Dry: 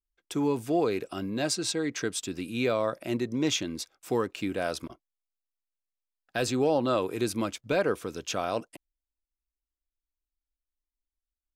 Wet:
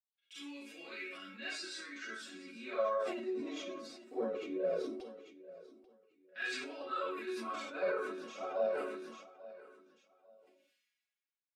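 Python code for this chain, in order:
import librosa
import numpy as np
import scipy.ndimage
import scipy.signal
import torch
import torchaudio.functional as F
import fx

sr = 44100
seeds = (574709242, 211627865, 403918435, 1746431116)

p1 = scipy.signal.sosfilt(scipy.signal.butter(2, 120.0, 'highpass', fs=sr, output='sos'), x)
p2 = fx.peak_eq(p1, sr, hz=830.0, db=-11.5, octaves=0.8)
p3 = fx.hum_notches(p2, sr, base_hz=60, count=9)
p4 = fx.resonator_bank(p3, sr, root=54, chord='minor', decay_s=0.25)
p5 = fx.rev_schroeder(p4, sr, rt60_s=0.4, comb_ms=31, drr_db=-9.5)
p6 = fx.filter_lfo_bandpass(p5, sr, shape='saw_down', hz=0.2, low_hz=400.0, high_hz=3200.0, q=1.9)
p7 = fx.env_flanger(p6, sr, rest_ms=4.2, full_db=-28.0)
p8 = p7 + fx.echo_feedback(p7, sr, ms=842, feedback_pct=27, wet_db=-18, dry=0)
p9 = fx.sustainer(p8, sr, db_per_s=40.0)
y = F.gain(torch.from_numpy(p9), 8.5).numpy()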